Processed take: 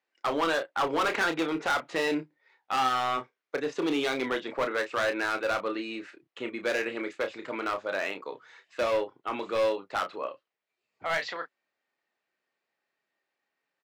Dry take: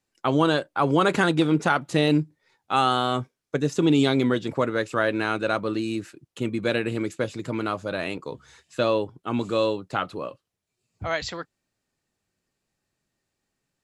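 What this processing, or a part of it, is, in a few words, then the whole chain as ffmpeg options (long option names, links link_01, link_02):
megaphone: -filter_complex "[0:a]highpass=510,lowpass=3100,equalizer=frequency=2000:width_type=o:width=0.38:gain=4,asoftclip=type=hard:threshold=-23dB,asplit=2[link_01][link_02];[link_02]adelay=31,volume=-8dB[link_03];[link_01][link_03]amix=inputs=2:normalize=0"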